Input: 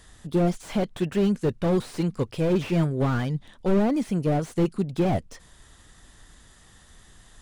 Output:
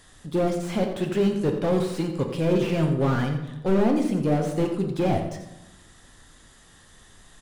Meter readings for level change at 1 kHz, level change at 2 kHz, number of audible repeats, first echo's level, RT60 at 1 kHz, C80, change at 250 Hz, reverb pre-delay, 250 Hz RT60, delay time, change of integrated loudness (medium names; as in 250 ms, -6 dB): +1.5 dB, +1.5 dB, 1, -11.0 dB, 0.95 s, 8.0 dB, +0.5 dB, 4 ms, 1.2 s, 87 ms, +1.0 dB